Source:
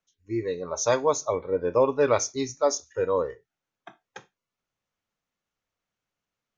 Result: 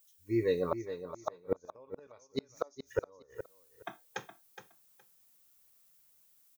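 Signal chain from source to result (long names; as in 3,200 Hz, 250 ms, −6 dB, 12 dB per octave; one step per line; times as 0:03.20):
automatic gain control gain up to 6 dB
background noise violet −63 dBFS
gate with flip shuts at −14 dBFS, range −37 dB
repeating echo 417 ms, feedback 17%, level −11 dB
level −3 dB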